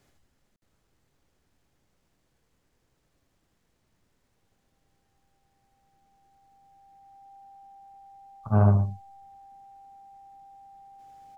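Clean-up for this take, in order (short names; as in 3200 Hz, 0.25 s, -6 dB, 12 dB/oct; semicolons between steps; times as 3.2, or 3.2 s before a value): notch 790 Hz, Q 30; room tone fill 0.56–0.62; inverse comb 79 ms -4.5 dB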